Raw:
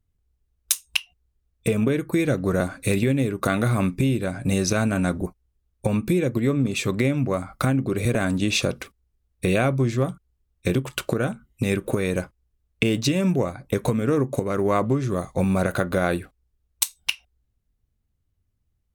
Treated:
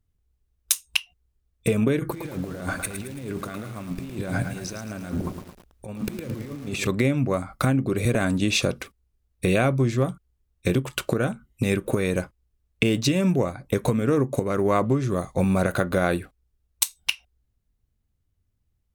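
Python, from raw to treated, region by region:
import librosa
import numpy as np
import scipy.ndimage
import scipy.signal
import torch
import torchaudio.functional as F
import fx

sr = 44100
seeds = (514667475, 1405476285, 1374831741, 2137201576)

y = fx.chain(x, sr, fx.over_compress(threshold_db=-33.0, ratio=-1.0),
    fx.echo_crushed(ms=110, feedback_pct=55, bits=7, wet_db=-7), at=(1.99, 6.87))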